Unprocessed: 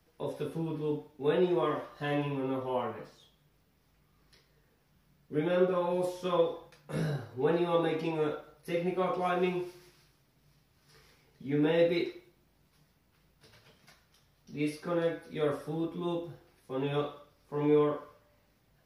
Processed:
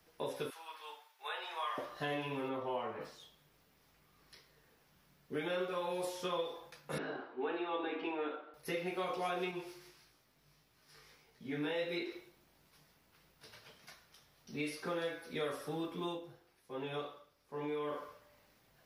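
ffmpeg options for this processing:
ffmpeg -i in.wav -filter_complex "[0:a]asettb=1/sr,asplit=3[link_01][link_02][link_03];[link_01]atrim=end=0.504[link_04];[link_02]atrim=start=0.5:end=1.78,asetpts=PTS-STARTPTS,afade=type=in:duration=0.004:curve=qsin,afade=type=out:start_time=1.276:duration=0.004:curve=qsin,highpass=frequency=940:width=0.5412,highpass=frequency=940:width=1.3066[link_05];[link_03]atrim=start=1.776[link_06];[link_04][link_05]acrossfade=duration=0.004:curve1=hsin:curve2=qsin[link_07];[link_07][link_06]acrossfade=duration=0.004:curve1=qsin:curve2=hsin,asplit=3[link_08][link_09][link_10];[link_08]afade=type=out:start_time=2.48:duration=0.02[link_11];[link_09]lowpass=frequency=2300:poles=1,afade=type=in:start_time=2.48:duration=0.02,afade=type=out:start_time=3:duration=0.02[link_12];[link_10]afade=type=in:start_time=3:duration=0.02[link_13];[link_11][link_12][link_13]amix=inputs=3:normalize=0,asettb=1/sr,asplit=3[link_14][link_15][link_16];[link_14]atrim=end=6.984[link_17];[link_15]atrim=start=6.98:end=8.54,asetpts=PTS-STARTPTS,afade=type=in:duration=0.004:curve=qsin,afade=type=out:start_time=1.556:duration=0.004:curve=qsin,highpass=frequency=270:width=0.5412,highpass=frequency=270:width=1.3066,equalizer=frequency=280:width_type=q:width=4:gain=5,equalizer=frequency=530:width_type=q:width=4:gain=-6,equalizer=frequency=2100:width_type=q:width=4:gain=-5,lowpass=frequency=2900:width=0.5412,lowpass=frequency=2900:width=1.3066[link_18];[link_16]atrim=start=8.536[link_19];[link_17][link_18]acrossfade=duration=0.004:curve1=hsin:curve2=qsin[link_20];[link_20][link_19]acrossfade=duration=0.004:curve1=qsin:curve2=hsin,asettb=1/sr,asplit=3[link_21][link_22][link_23];[link_21]atrim=end=9.514[link_24];[link_22]atrim=start=9.51:end=12.12,asetpts=PTS-STARTPTS,afade=type=in:duration=0.004:curve=qsin,afade=type=out:start_time=2.606:duration=0.004:curve=qsin,flanger=delay=17:depth=3.3:speed=1.6[link_25];[link_23]atrim=start=12.116[link_26];[link_24][link_25]acrossfade=duration=0.004:curve1=hsin:curve2=qsin[link_27];[link_27][link_26]acrossfade=duration=0.004:curve1=qsin:curve2=hsin,asplit=3[link_28][link_29][link_30];[link_28]atrim=end=16.19,asetpts=PTS-STARTPTS,afade=type=out:start_time=16.04:duration=0.15:silence=0.398107[link_31];[link_29]atrim=start=16.19:end=17.83,asetpts=PTS-STARTPTS,volume=-8dB[link_32];[link_30]atrim=start=17.83,asetpts=PTS-STARTPTS,afade=type=in:duration=0.15:silence=0.398107[link_33];[link_31][link_32][link_33]concat=n=3:v=0:a=1,lowshelf=frequency=280:gain=-10,acrossover=split=970|2400[link_34][link_35][link_36];[link_34]acompressor=threshold=-42dB:ratio=4[link_37];[link_35]acompressor=threshold=-51dB:ratio=4[link_38];[link_36]acompressor=threshold=-50dB:ratio=4[link_39];[link_37][link_38][link_39]amix=inputs=3:normalize=0,volume=4dB" out.wav

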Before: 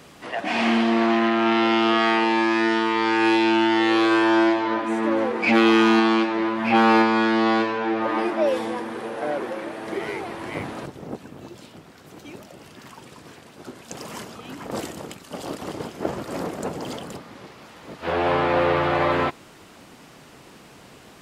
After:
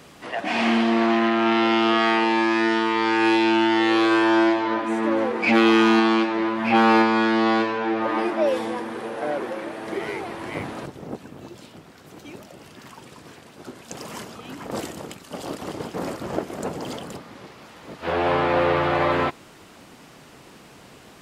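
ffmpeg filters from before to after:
ffmpeg -i in.wav -filter_complex "[0:a]asplit=3[link_01][link_02][link_03];[link_01]atrim=end=15.942[link_04];[link_02]atrim=start=15.938:end=16.502,asetpts=PTS-STARTPTS,areverse[link_05];[link_03]atrim=start=16.498[link_06];[link_04][link_05]acrossfade=duration=0.004:curve1=hsin:curve2=hsin[link_07];[link_07][link_06]acrossfade=duration=0.004:curve1=hsin:curve2=hsin" out.wav

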